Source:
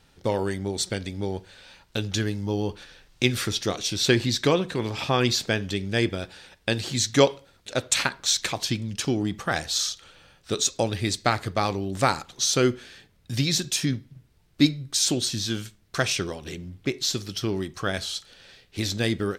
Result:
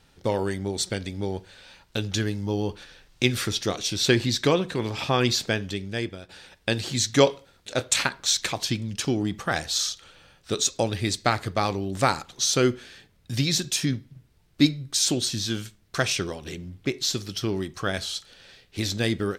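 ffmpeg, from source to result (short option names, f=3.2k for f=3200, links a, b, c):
-filter_complex "[0:a]asettb=1/sr,asplit=3[a][b][c];[a]atrim=end=7.244[d];[b]atrim=start=7.24:end=7.98,asetpts=PTS-STARTPTS,afade=t=in:d=0.004:c=qsin,afade=t=out:st=0.736:d=0.004:c=qsin,asplit=2[e][f];[f]adelay=26,volume=-12.5dB[g];[e][g]amix=inputs=2:normalize=0,atrim=end_sample=32634[h];[c]atrim=start=7.976[i];[d][h]acrossfade=d=0.004:c1=hsin:c2=qsin[j];[j][i]acrossfade=d=0.004:c1=qsin:c2=hsin,asplit=2[k][l];[k]atrim=end=6.29,asetpts=PTS-STARTPTS,afade=t=out:st=5.45:d=0.84:silence=0.251189[m];[l]atrim=start=6.29,asetpts=PTS-STARTPTS,afade=t=in:d=0.004:c=hsin:silence=0.251189[n];[m][n]concat=n=2:v=0:a=1"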